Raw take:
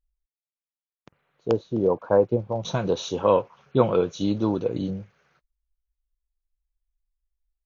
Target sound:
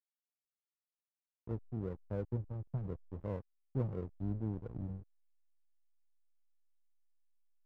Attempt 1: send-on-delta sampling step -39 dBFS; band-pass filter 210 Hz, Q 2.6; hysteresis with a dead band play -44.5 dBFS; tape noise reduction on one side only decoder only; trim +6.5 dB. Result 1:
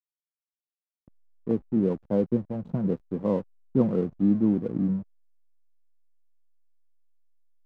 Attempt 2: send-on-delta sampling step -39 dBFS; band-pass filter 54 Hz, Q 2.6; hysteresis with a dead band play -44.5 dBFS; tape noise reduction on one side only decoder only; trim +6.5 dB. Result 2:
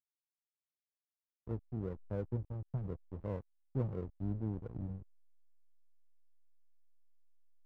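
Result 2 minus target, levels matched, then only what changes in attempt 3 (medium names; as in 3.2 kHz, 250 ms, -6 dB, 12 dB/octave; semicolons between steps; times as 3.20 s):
send-on-delta sampling: distortion +10 dB
change: send-on-delta sampling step -46.5 dBFS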